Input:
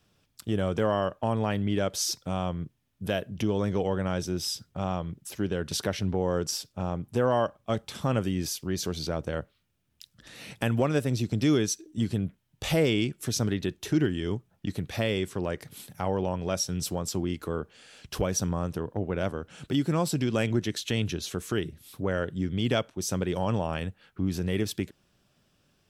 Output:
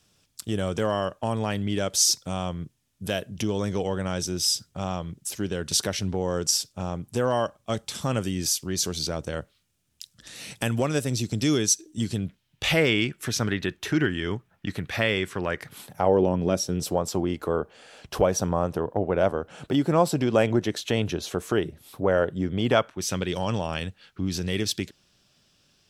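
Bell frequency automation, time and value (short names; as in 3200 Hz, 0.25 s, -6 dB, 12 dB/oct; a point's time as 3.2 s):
bell +10.5 dB 1.9 oct
12.03 s 7600 Hz
12.86 s 1700 Hz
15.61 s 1700 Hz
16.39 s 230 Hz
17.01 s 700 Hz
22.64 s 700 Hz
23.34 s 4900 Hz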